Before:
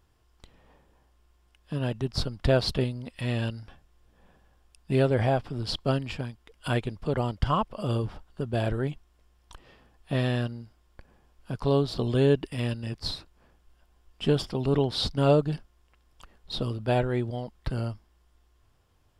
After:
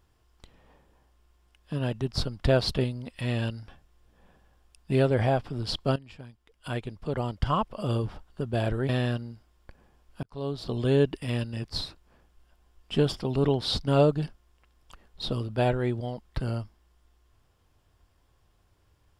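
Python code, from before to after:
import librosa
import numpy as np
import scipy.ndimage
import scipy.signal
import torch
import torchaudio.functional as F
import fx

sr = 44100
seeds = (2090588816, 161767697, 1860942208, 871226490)

y = fx.edit(x, sr, fx.fade_in_from(start_s=5.96, length_s=1.73, floor_db=-16.5),
    fx.cut(start_s=8.89, length_s=1.3),
    fx.fade_in_span(start_s=11.53, length_s=0.98, curve='qsin'), tone=tone)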